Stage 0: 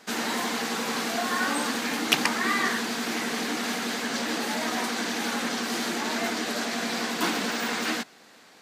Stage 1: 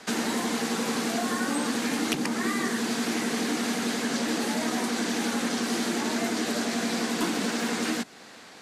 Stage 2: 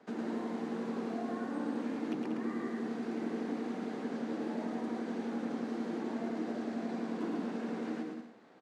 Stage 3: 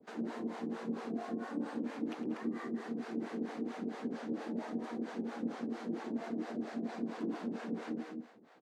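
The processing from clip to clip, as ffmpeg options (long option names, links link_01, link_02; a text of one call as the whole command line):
ffmpeg -i in.wav -filter_complex "[0:a]lowpass=frequency=12000:width=0.5412,lowpass=frequency=12000:width=1.3066,lowshelf=frequency=81:gain=9,acrossover=split=180|470|6800[link_01][link_02][link_03][link_04];[link_01]acompressor=threshold=-47dB:ratio=4[link_05];[link_02]acompressor=threshold=-33dB:ratio=4[link_06];[link_03]acompressor=threshold=-38dB:ratio=4[link_07];[link_04]acompressor=threshold=-44dB:ratio=4[link_08];[link_05][link_06][link_07][link_08]amix=inputs=4:normalize=0,volume=5.5dB" out.wav
ffmpeg -i in.wav -filter_complex "[0:a]bandpass=frequency=330:width_type=q:width=0.7:csg=0,asplit=2[link_01][link_02];[link_02]aecho=0:1:110|187|240.9|278.6|305:0.631|0.398|0.251|0.158|0.1[link_03];[link_01][link_03]amix=inputs=2:normalize=0,volume=-8dB" out.wav
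ffmpeg -i in.wav -filter_complex "[0:a]acrossover=split=510[link_01][link_02];[link_01]aeval=exprs='val(0)*(1-1/2+1/2*cos(2*PI*4.4*n/s))':channel_layout=same[link_03];[link_02]aeval=exprs='val(0)*(1-1/2-1/2*cos(2*PI*4.4*n/s))':channel_layout=same[link_04];[link_03][link_04]amix=inputs=2:normalize=0,volume=2.5dB" out.wav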